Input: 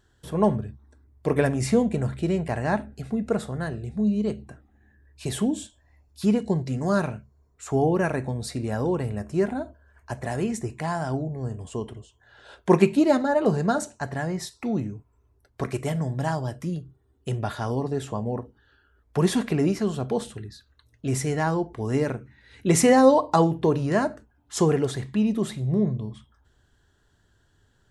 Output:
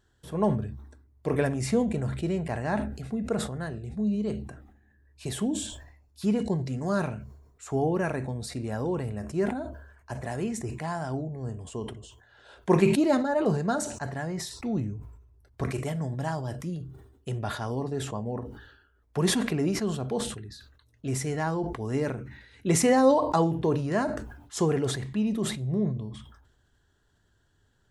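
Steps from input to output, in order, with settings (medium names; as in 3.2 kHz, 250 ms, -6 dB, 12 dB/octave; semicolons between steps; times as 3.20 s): 14.58–15.71 s: peaking EQ 62 Hz +10.5 dB 1.7 oct; decay stretcher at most 65 dB/s; trim -4.5 dB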